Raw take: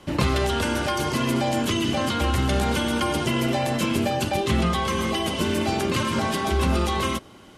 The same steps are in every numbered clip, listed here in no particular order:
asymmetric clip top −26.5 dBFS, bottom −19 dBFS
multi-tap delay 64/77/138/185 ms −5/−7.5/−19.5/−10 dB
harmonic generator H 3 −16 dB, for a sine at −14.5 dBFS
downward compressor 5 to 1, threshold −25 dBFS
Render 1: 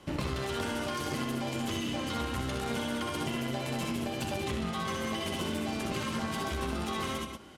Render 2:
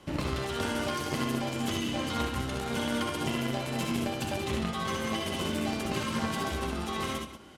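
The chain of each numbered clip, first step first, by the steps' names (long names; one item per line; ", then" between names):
multi-tap delay, then downward compressor, then asymmetric clip, then harmonic generator
downward compressor, then asymmetric clip, then multi-tap delay, then harmonic generator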